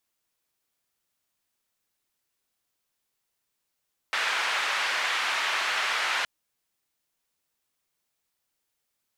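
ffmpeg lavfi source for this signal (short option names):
-f lavfi -i "anoisesrc=c=white:d=2.12:r=44100:seed=1,highpass=f=1100,lowpass=f=2200,volume=-10.3dB"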